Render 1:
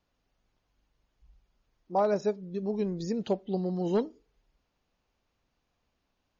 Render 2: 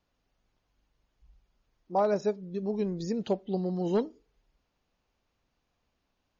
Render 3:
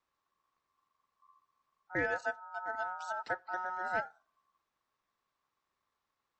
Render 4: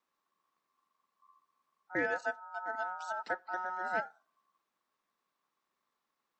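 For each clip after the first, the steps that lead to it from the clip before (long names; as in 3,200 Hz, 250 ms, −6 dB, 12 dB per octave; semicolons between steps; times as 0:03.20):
no processing that can be heard
ring modulation 1,100 Hz; level −4.5 dB
low shelf with overshoot 140 Hz −10.5 dB, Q 1.5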